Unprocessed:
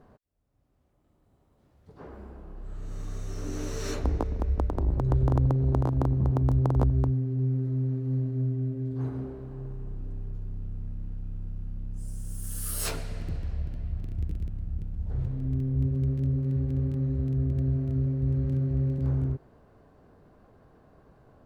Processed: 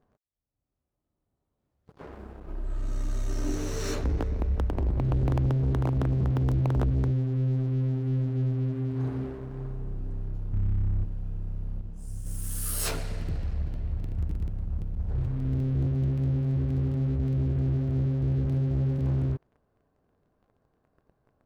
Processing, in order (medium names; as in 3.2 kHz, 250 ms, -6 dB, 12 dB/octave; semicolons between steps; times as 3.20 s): 2.48–3.55 s: comb 3.2 ms, depth 100%; 10.53–11.04 s: peaking EQ 80 Hz +13 dB 2.8 oct; waveshaping leveller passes 3; 11.81–12.26 s: detune thickener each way 50 cents; trim -9 dB